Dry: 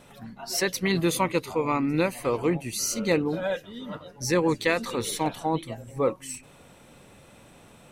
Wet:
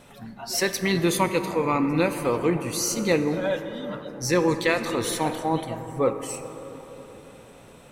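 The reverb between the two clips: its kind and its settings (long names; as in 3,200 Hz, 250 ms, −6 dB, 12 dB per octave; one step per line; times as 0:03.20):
dense smooth reverb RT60 4.2 s, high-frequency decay 0.3×, DRR 8 dB
level +1.5 dB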